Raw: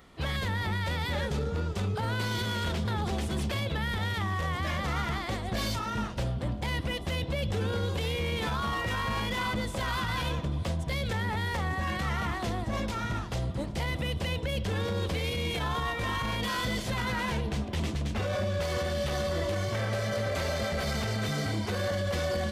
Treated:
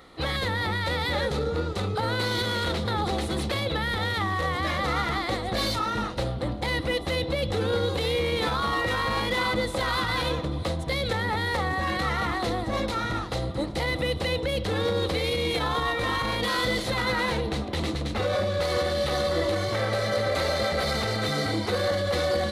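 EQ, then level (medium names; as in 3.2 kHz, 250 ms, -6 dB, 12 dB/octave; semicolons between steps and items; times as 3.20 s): graphic EQ with 31 bands 315 Hz +9 dB, 500 Hz +10 dB, 800 Hz +7 dB, 1.25 kHz +8 dB, 2 kHz +6 dB, 4 kHz +12 dB, 10 kHz +6 dB; 0.0 dB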